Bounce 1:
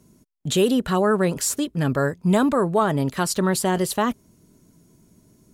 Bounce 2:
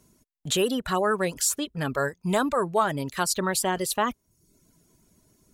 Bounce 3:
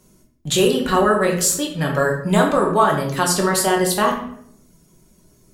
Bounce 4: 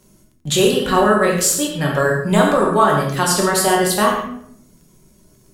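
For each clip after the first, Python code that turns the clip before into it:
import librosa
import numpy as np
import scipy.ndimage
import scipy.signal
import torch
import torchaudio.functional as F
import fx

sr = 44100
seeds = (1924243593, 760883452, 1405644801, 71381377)

y1 = fx.dereverb_blind(x, sr, rt60_s=0.61)
y1 = fx.peak_eq(y1, sr, hz=190.0, db=-8.0, octaves=2.7)
y2 = fx.room_shoebox(y1, sr, seeds[0], volume_m3=140.0, walls='mixed', distance_m=1.0)
y2 = y2 * 10.0 ** (4.0 / 20.0)
y3 = fx.rev_gated(y2, sr, seeds[1], gate_ms=150, shape='flat', drr_db=5.0)
y3 = fx.dmg_crackle(y3, sr, seeds[2], per_s=16.0, level_db=-44.0)
y3 = y3 * 10.0 ** (1.0 / 20.0)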